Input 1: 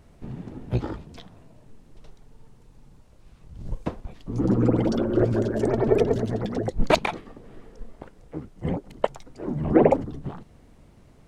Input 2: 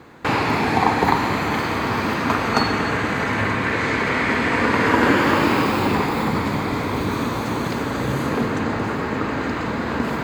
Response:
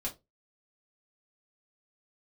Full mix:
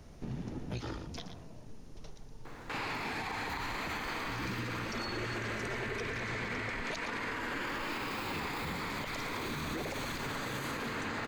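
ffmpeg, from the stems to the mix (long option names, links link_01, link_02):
-filter_complex "[0:a]equalizer=frequency=5800:width_type=o:width=0.76:gain=7.5,bandreject=frequency=7900:width=5.2,volume=0.5dB,asplit=2[link_01][link_02];[link_02]volume=-11dB[link_03];[1:a]highpass=frequency=280:poles=1,adelay=2450,volume=-3dB[link_04];[link_03]aecho=0:1:117:1[link_05];[link_01][link_04][link_05]amix=inputs=3:normalize=0,acrossover=split=110|1500[link_06][link_07][link_08];[link_06]acompressor=threshold=-42dB:ratio=4[link_09];[link_07]acompressor=threshold=-38dB:ratio=4[link_10];[link_08]acompressor=threshold=-36dB:ratio=4[link_11];[link_09][link_10][link_11]amix=inputs=3:normalize=0,alimiter=level_in=4.5dB:limit=-24dB:level=0:latency=1:release=34,volume=-4.5dB"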